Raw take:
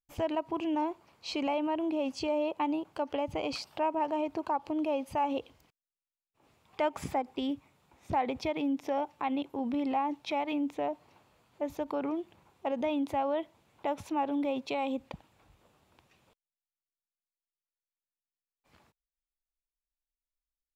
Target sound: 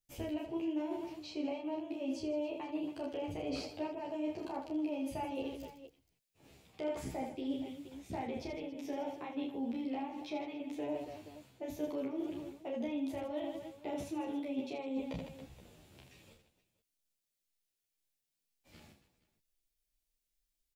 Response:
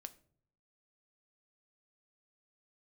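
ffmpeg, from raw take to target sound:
-filter_complex "[0:a]acrossover=split=300|1700[a][b][c];[a]acompressor=threshold=-43dB:ratio=4[d];[b]acompressor=threshold=-34dB:ratio=4[e];[c]acompressor=threshold=-52dB:ratio=4[f];[d][e][f]amix=inputs=3:normalize=0,equalizer=f=1.1k:w=1.1:g=-12.5,aecho=1:1:30|78|154.8|277.7|474.3:0.631|0.398|0.251|0.158|0.1,areverse,acompressor=threshold=-43dB:ratio=6,areverse,asplit=2[g][h];[h]adelay=11.7,afreqshift=-2[i];[g][i]amix=inputs=2:normalize=1,volume=10dB"

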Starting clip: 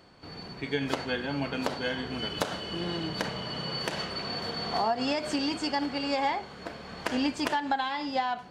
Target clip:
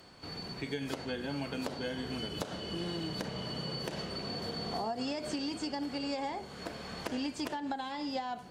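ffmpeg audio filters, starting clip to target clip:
-filter_complex "[0:a]aemphasis=mode=production:type=cd,acrossover=split=620|7200[a][b][c];[a]acompressor=threshold=-35dB:ratio=4[d];[b]acompressor=threshold=-43dB:ratio=4[e];[c]acompressor=threshold=-58dB:ratio=4[f];[d][e][f]amix=inputs=3:normalize=0"

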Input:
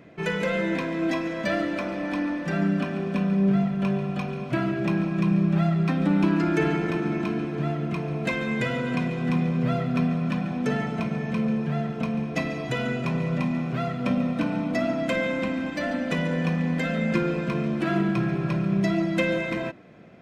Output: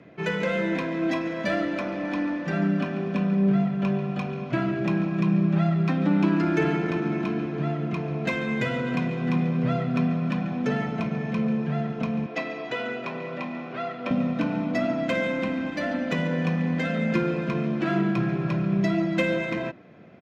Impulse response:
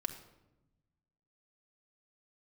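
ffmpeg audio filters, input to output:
-filter_complex "[0:a]highpass=69,aresample=16000,aresample=44100,acrossover=split=130|690[a][b][c];[c]adynamicsmooth=sensitivity=5.5:basefreq=6.1k[d];[a][b][d]amix=inputs=3:normalize=0,asettb=1/sr,asplit=3[e][f][g];[e]atrim=end=12.264[h];[f]atrim=start=12.26:end=14.11,asetpts=PTS-STARTPTS,afade=t=in:d=0.004:c=qsin,afade=t=out:st=1.846:d=0.004:c=qsin,acrossover=split=280 5600:gain=0.0891 1 0.224[i][j][k];[i][j][k]amix=inputs=3:normalize=0[l];[g]atrim=start=14.106[m];[h][l]acrossfade=d=0.004:c1=hsin:c2=qsin[n];[n][m]acrossfade=d=0.004:c1=qsin:c2=hsin"

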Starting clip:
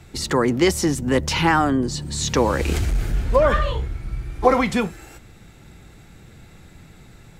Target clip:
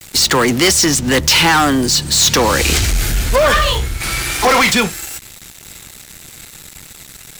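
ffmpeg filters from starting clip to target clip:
-filter_complex "[0:a]acrossover=split=110|500|6400[a][b][c][d];[d]acompressor=threshold=-52dB:ratio=6[e];[a][b][c][e]amix=inputs=4:normalize=0,aeval=exprs='sgn(val(0))*max(abs(val(0))-0.00473,0)':c=same,crystalizer=i=9.5:c=0,asoftclip=type=tanh:threshold=-15dB,asplit=3[f][g][h];[f]afade=t=out:st=4:d=0.02[i];[g]asplit=2[j][k];[k]highpass=f=720:p=1,volume=21dB,asoftclip=type=tanh:threshold=-15dB[l];[j][l]amix=inputs=2:normalize=0,lowpass=f=6.4k:p=1,volume=-6dB,afade=t=in:st=4:d=0.02,afade=t=out:st=4.69:d=0.02[m];[h]afade=t=in:st=4.69:d=0.02[n];[i][m][n]amix=inputs=3:normalize=0,volume=7dB"

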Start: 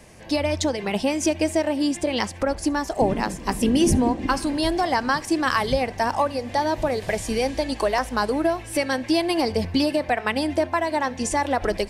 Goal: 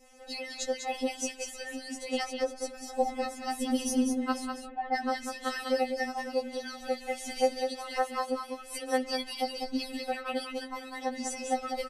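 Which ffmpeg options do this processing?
-filter_complex "[0:a]asettb=1/sr,asplit=3[a][b][c];[a]atrim=end=4.464[d];[b]atrim=start=4.46:end=4.95,asetpts=PTS-STARTPTS,afade=t=in:d=0.004:c=qsin,afade=t=out:st=0.486:d=0.004:c=qsin,lowpass=f=1.9k:w=0.5412,lowpass=f=1.9k:w=1.3066[e];[c]atrim=start=4.946[f];[d][e]acrossfade=d=0.004:c1=hsin:c2=qsin[g];[g][f]acrossfade=d=0.004:c1=qsin:c2=hsin,asettb=1/sr,asplit=3[h][i][j];[h]atrim=end=7.654[k];[i]atrim=start=7.65:end=8.14,asetpts=PTS-STARTPTS,afade=t=in:d=0.004:c=qsin,afade=t=out:st=0.486:d=0.004:c=qsin,equalizer=f=250:t=o:w=0.35:g=-8.5[l];[j]atrim=start=8.136[m];[k][l]acrossfade=d=0.004:c1=hsin:c2=qsin[n];[n][m]acrossfade=d=0.004:c1=qsin:c2=hsin,aecho=1:1:5.4:0.75,adynamicequalizer=threshold=0.0224:dfrequency=1300:dqfactor=0.74:tfrequency=1300:tqfactor=0.74:attack=5:release=100:ratio=0.375:range=2:mode=cutabove:tftype=bell,aecho=1:1:198:0.501,afftfilt=real='re*3.46*eq(mod(b,12),0)':imag='im*3.46*eq(mod(b,12),0)':win_size=2048:overlap=0.75,volume=-7.5dB"

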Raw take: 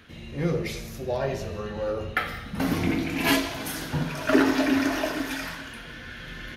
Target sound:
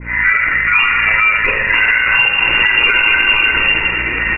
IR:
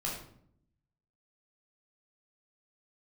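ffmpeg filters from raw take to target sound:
-filter_complex "[0:a]aeval=exprs='val(0)*sin(2*PI*980*n/s)':c=same,asubboost=boost=8.5:cutoff=150,lowpass=f=2.4k:t=q:w=0.5098,lowpass=f=2.4k:t=q:w=0.6013,lowpass=f=2.4k:t=q:w=0.9,lowpass=f=2.4k:t=q:w=2.563,afreqshift=-2800,aecho=1:1:2.1:0.42[a];[1:a]atrim=start_sample=2205,asetrate=74970,aresample=44100[b];[a][b]afir=irnorm=-1:irlink=0,aeval=exprs='val(0)+0.00251*(sin(2*PI*60*n/s)+sin(2*PI*2*60*n/s)/2+sin(2*PI*3*60*n/s)/3+sin(2*PI*4*60*n/s)/4+sin(2*PI*5*60*n/s)/5)':c=same,tremolo=f=110:d=0.4,atempo=1.5,acompressor=threshold=-36dB:ratio=6,aecho=1:1:233|466|699:0.178|0.0462|0.012,alimiter=level_in=31dB:limit=-1dB:release=50:level=0:latency=1,adynamicequalizer=threshold=0.0708:dfrequency=1700:dqfactor=0.7:tfrequency=1700:tqfactor=0.7:attack=5:release=100:ratio=0.375:range=3.5:mode=boostabove:tftype=highshelf,volume=-6dB"

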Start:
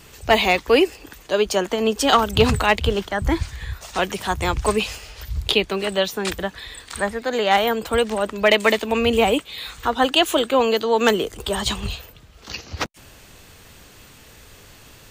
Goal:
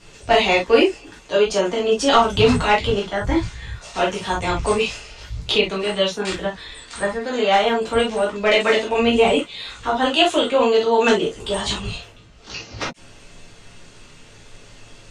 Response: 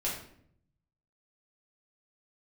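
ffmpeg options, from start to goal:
-filter_complex "[0:a]lowpass=f=8.5k:w=0.5412,lowpass=f=8.5k:w=1.3066[a];[1:a]atrim=start_sample=2205,atrim=end_sample=3087[b];[a][b]afir=irnorm=-1:irlink=0,volume=-3.5dB"

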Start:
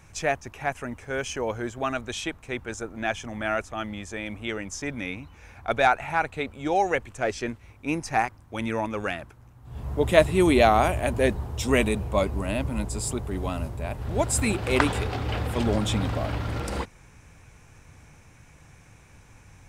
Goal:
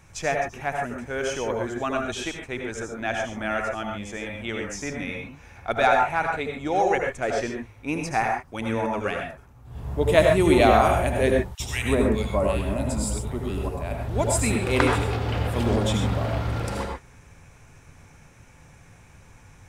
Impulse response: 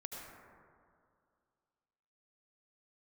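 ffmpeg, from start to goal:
-filter_complex "[0:a]asettb=1/sr,asplit=3[a][b][c];[a]atrim=end=11.404[d];[b]atrim=start=11.4:end=13.69,asetpts=PTS-STARTPTS,afade=t=in:d=0.004:c=qsin,afade=t=out:st=2.286:d=0.004:c=qsin,acrossover=split=1600[e][f];[e]adelay=200[g];[g][f]amix=inputs=2:normalize=0,atrim=end_sample=100989[h];[c]atrim=start=13.686[i];[d][h]acrossfade=d=0.004:c1=hsin:c2=qsin[j];[j][i]acrossfade=d=0.004:c1=qsin:c2=hsin[k];[1:a]atrim=start_sample=2205,atrim=end_sample=6615[l];[k][l]afir=irnorm=-1:irlink=0,volume=5dB"

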